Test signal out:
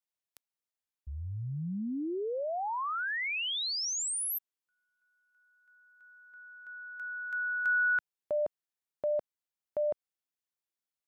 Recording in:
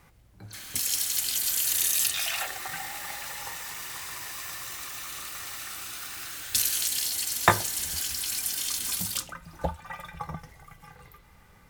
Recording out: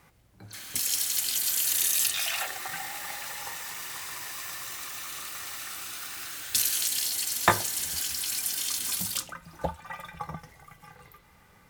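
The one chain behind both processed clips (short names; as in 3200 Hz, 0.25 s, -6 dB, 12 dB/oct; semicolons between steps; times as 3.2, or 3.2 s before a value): low shelf 70 Hz -10.5 dB; soft clip -6.5 dBFS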